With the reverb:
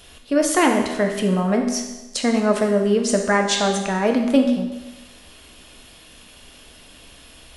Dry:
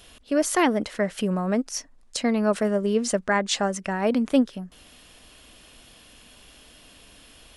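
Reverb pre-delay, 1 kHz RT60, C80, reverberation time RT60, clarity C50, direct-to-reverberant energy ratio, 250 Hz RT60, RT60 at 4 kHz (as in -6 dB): 12 ms, 1.1 s, 7.5 dB, 1.1 s, 5.5 dB, 2.5 dB, 1.1 s, 1.1 s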